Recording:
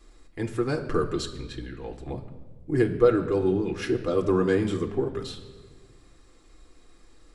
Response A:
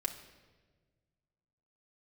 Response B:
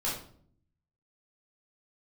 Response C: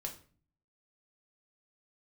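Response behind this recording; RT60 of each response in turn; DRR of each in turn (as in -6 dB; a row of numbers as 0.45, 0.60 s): A; 1.4, 0.55, 0.45 s; 2.0, -7.0, 1.5 dB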